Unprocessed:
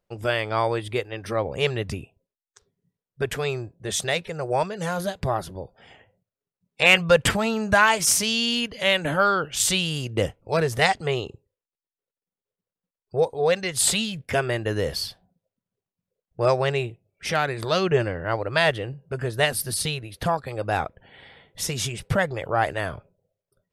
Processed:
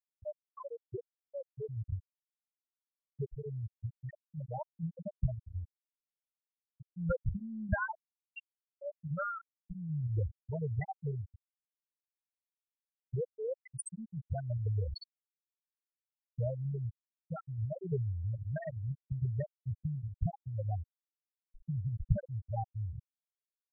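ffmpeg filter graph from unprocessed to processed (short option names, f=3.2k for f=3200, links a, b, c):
-filter_complex "[0:a]asettb=1/sr,asplit=3[a][b][c];[a]atrim=end=4.664[d];[b]atrim=start=4.66:end=6.97,asetpts=PTS-STARTPTS,afade=t=in:d=0.004:c=qsin,afade=t=out:st=2.306:d=0.004:c=qsin,asplit=2[e][f];[f]adelay=25,volume=-7.5dB[g];[e][g]amix=inputs=2:normalize=0,atrim=end_sample=101871,acompressor=threshold=-20dB:ratio=4:attack=3.2:release=140:knee=1:detection=peak[h];[c]atrim=start=6.966[i];[d][h]acrossfade=d=0.004:c1=hsin:c2=qsin[j];[j][i]acrossfade=d=0.004:c1=qsin:c2=hsin,acompressor=threshold=-43dB:ratio=2,asubboost=boost=5:cutoff=120,afftfilt=real='re*gte(hypot(re,im),0.126)':imag='im*gte(hypot(re,im),0.126)':win_size=1024:overlap=0.75,volume=1dB"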